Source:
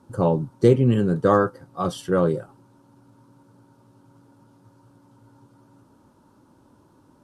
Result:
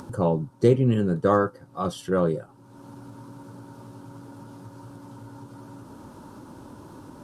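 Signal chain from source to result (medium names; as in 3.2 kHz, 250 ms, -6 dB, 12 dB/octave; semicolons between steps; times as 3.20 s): upward compressor, threshold -27 dBFS; trim -2.5 dB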